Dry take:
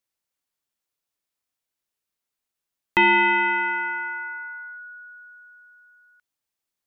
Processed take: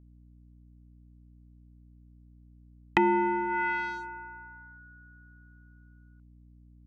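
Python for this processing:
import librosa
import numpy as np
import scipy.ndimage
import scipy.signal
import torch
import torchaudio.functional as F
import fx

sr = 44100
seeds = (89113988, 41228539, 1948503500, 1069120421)

y = fx.wiener(x, sr, points=25)
y = fx.env_lowpass_down(y, sr, base_hz=700.0, full_db=-20.5)
y = fx.add_hum(y, sr, base_hz=60, snr_db=20)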